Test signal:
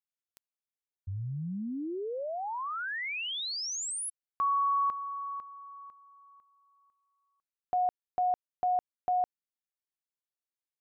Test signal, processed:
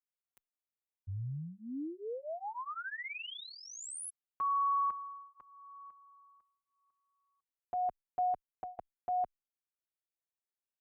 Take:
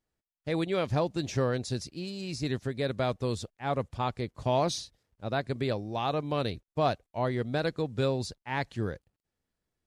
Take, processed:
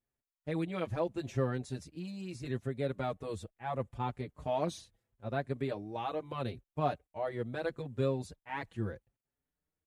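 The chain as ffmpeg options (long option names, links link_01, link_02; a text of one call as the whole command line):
ffmpeg -i in.wav -filter_complex "[0:a]equalizer=frequency=4900:width=1.4:gain=-11,asplit=2[link_01][link_02];[link_02]adelay=5.4,afreqshift=0.77[link_03];[link_01][link_03]amix=inputs=2:normalize=1,volume=-2.5dB" out.wav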